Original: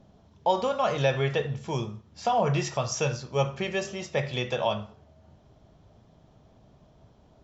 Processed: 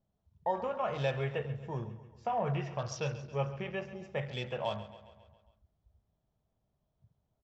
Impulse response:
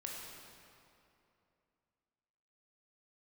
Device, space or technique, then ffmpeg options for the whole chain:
low shelf boost with a cut just above: -filter_complex "[0:a]afwtdn=0.0126,asettb=1/sr,asplit=3[a][b][c];[a]atrim=end=2.564[d];[b]atrim=start=2.56:end=3.96,asetpts=PTS-STARTPTS,afade=t=in:d=0.004:c=qsin,afade=t=out:st=1.396:d=0.004:c=qsin,lowpass=f=5.9k:w=0.5412,lowpass=f=5.9k:w=1.3066[e];[c]atrim=start=3.956[f];[d][e]acrossfade=d=0.004:c1=hsin:c2=qsin[g];[g][f]acrossfade=d=0.004:c1=qsin:c2=hsin,lowshelf=f=80:g=6,equalizer=f=290:t=o:w=0.78:g=-3.5,aecho=1:1:136|272|408|544|680|816:0.178|0.103|0.0598|0.0347|0.0201|0.0117,volume=-8dB"

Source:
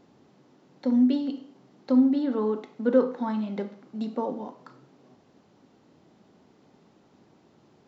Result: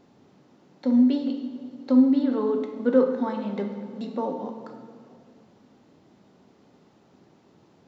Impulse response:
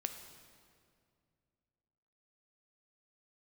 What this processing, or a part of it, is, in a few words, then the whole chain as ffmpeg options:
stairwell: -filter_complex "[1:a]atrim=start_sample=2205[a];[0:a][a]afir=irnorm=-1:irlink=0,volume=2dB"

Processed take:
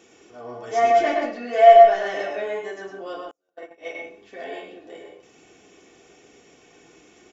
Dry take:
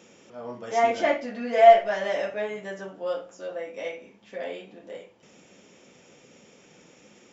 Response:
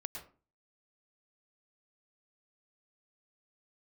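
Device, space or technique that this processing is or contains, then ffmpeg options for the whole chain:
microphone above a desk: -filter_complex "[0:a]aecho=1:1:2.7:0.64[a];[1:a]atrim=start_sample=2205[b];[a][b]afir=irnorm=-1:irlink=0,asettb=1/sr,asplit=3[c][d][e];[c]atrim=end=3.314[f];[d]atrim=start=3.31:end=3.95,asetpts=PTS-STARTPTS,afade=t=in:d=0.004:c=qsin,afade=t=out:st=0.636:d=0.004:c=qsin,agate=range=-40dB:threshold=-35dB:ratio=16:detection=peak[g];[e]atrim=start=3.946[h];[f][g]acrossfade=d=0.004:c1=hsin:c2=qsin[i];[i][h]acrossfade=d=0.004:c1=qsin:c2=hsin,volume=2.5dB"

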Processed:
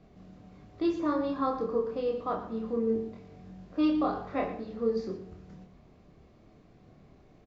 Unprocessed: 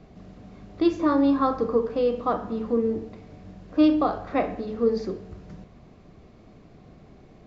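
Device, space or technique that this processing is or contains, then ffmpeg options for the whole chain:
slapback doubling: -filter_complex "[0:a]asettb=1/sr,asplit=3[a][b][c];[a]atrim=end=2.854[d];[b]atrim=start=2.85:end=4.48,asetpts=PTS-STARTPTS,afade=t=in:d=0.004:c=qsin,afade=t=out:st=1.626:d=0.004:c=qsin,asplit=2[e][f];[f]adelay=22,volume=-5.5dB[g];[e][g]amix=inputs=2:normalize=0,atrim=end_sample=71883[h];[c]atrim=start=4.476[i];[d][h]acrossfade=d=0.004:c1=hsin:c2=qsin[j];[j][i]acrossfade=d=0.004:c1=qsin:c2=hsin,asplit=3[k][l][m];[l]adelay=27,volume=-4dB[n];[m]adelay=118,volume=-11dB[o];[k][n][o]amix=inputs=3:normalize=0,volume=-8.5dB"

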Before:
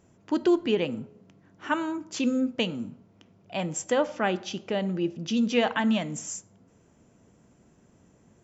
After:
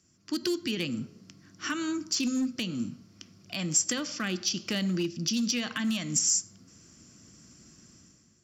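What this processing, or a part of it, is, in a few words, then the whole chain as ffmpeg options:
FM broadcast chain: -filter_complex "[0:a]lowpass=6.3k,asettb=1/sr,asplit=3[a][b][c];[a]atrim=end=3.984[d];[b]atrim=start=3.98:end=4.6,asetpts=PTS-STARTPTS,afade=t=in:d=0.004:c=qsin,afade=t=out:st=0.616:d=0.004:c=qsin,agate=range=-33dB:threshold=-34dB:ratio=3:detection=peak[e];[c]atrim=start=4.596[f];[d][e]acrossfade=d=0.004:c1=hsin:c2=qsin[g];[g][f]acrossfade=d=0.004:c1=qsin:c2=hsin,highpass=f=44:w=0.5412,highpass=f=44:w=1.3066,superequalizer=7b=0.355:8b=0.355:9b=0.282:14b=2.51,dynaudnorm=f=110:g=9:m=12dB,acrossover=split=340|1500[h][i][j];[h]acompressor=threshold=-17dB:ratio=4[k];[i]acompressor=threshold=-29dB:ratio=4[l];[j]acompressor=threshold=-25dB:ratio=4[m];[k][l][m]amix=inputs=3:normalize=0,aemphasis=mode=production:type=50fm,alimiter=limit=-13dB:level=0:latency=1:release=208,asoftclip=type=hard:threshold=-15dB,lowpass=f=15k:w=0.5412,lowpass=f=15k:w=1.3066,aemphasis=mode=production:type=50fm,volume=-8dB"

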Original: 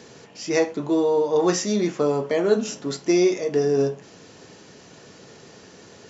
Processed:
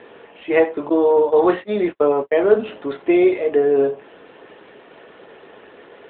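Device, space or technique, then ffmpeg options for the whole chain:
telephone: -filter_complex "[0:a]asettb=1/sr,asplit=3[a][b][c];[a]atrim=end=0.894[d];[b]atrim=start=0.89:end=2.45,asetpts=PTS-STARTPTS,afade=t=in:d=0.004:c=qsin,afade=t=out:st=1.556:d=0.004:c=qsin,agate=range=-52dB:threshold=-24dB:ratio=16:detection=peak[e];[c]atrim=start=2.446[f];[d][e]acrossfade=d=0.004:c1=hsin:c2=qsin[g];[g][f]acrossfade=d=0.004:c1=qsin:c2=hsin,highpass=380,lowpass=3.1k,volume=7.5dB" -ar 8000 -c:a libopencore_amrnb -b:a 12200

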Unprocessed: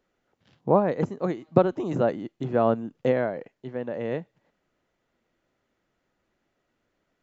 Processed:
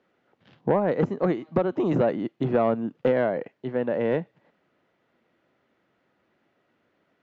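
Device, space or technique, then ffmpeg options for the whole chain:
AM radio: -af "highpass=120,lowpass=3.5k,acompressor=threshold=-22dB:ratio=6,asoftclip=type=tanh:threshold=-18dB,volume=6.5dB"

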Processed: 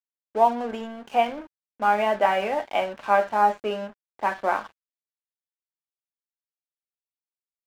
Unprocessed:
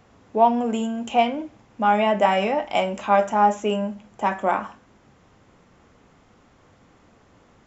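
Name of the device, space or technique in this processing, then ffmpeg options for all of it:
pocket radio on a weak battery: -af "highpass=310,lowpass=3k,aeval=exprs='sgn(val(0))*max(abs(val(0))-0.0106,0)':c=same,equalizer=f=1.6k:t=o:w=0.27:g=5.5,volume=-1.5dB"

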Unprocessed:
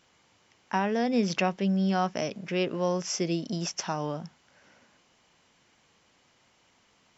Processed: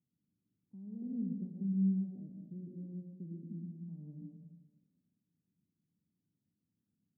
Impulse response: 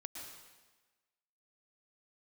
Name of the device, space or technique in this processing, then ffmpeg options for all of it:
club heard from the street: -filter_complex "[0:a]alimiter=limit=-20.5dB:level=0:latency=1:release=215,lowpass=f=180:w=0.5412,lowpass=f=180:w=1.3066[a];[1:a]atrim=start_sample=2205[b];[a][b]afir=irnorm=-1:irlink=0,asettb=1/sr,asplit=3[c][d][e];[c]atrim=end=1.024[f];[d]atrim=start=1.02:end=2.27,asetpts=PTS-STARTPTS,afade=t=in:d=0.004:c=qsin,afade=t=out:st=1.246:d=0.004:c=qsin,equalizer=f=320:t=o:w=2.1:g=5[g];[e]atrim=start=2.266[h];[f][g]acrossfade=d=0.004:c1=hsin:c2=qsin[i];[i][h]acrossfade=d=0.004:c1=qsin:c2=hsin,highpass=240,volume=5dB"

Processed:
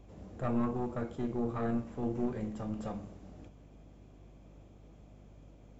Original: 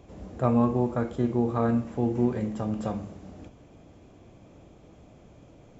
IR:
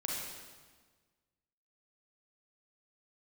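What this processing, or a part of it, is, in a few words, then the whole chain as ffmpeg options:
valve amplifier with mains hum: -af "aeval=exprs='(tanh(7.94*val(0)+0.65)-tanh(0.65))/7.94':c=same,aeval=exprs='val(0)+0.00282*(sin(2*PI*50*n/s)+sin(2*PI*2*50*n/s)/2+sin(2*PI*3*50*n/s)/3+sin(2*PI*4*50*n/s)/4+sin(2*PI*5*50*n/s)/5)':c=same,volume=-4dB"

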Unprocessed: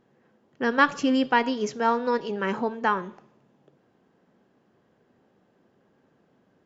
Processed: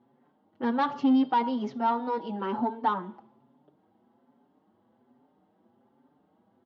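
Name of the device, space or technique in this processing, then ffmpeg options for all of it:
barber-pole flanger into a guitar amplifier: -filter_complex "[0:a]asplit=2[a][b];[b]adelay=5.5,afreqshift=1.2[c];[a][c]amix=inputs=2:normalize=1,asoftclip=type=tanh:threshold=-21.5dB,highpass=75,equalizer=f=160:t=q:w=4:g=-6,equalizer=f=250:t=q:w=4:g=7,equalizer=f=460:t=q:w=4:g=-4,equalizer=f=850:t=q:w=4:g=8,equalizer=f=1.7k:t=q:w=4:g=-8,equalizer=f=2.5k:t=q:w=4:g=-10,lowpass=f=3.8k:w=0.5412,lowpass=f=3.8k:w=1.3066"

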